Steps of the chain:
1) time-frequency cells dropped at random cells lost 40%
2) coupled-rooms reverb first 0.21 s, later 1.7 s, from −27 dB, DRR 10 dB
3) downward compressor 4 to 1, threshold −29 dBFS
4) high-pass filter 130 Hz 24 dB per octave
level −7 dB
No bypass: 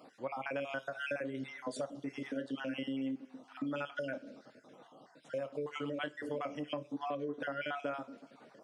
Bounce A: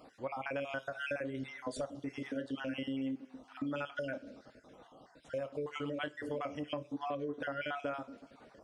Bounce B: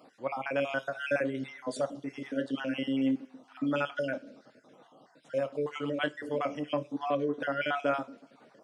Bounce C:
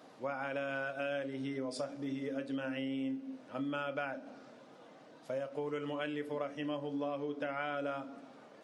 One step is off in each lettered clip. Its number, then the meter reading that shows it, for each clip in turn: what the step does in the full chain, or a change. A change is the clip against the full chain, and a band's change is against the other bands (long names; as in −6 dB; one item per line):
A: 4, 125 Hz band +2.0 dB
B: 3, change in momentary loudness spread −10 LU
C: 1, 4 kHz band −2.0 dB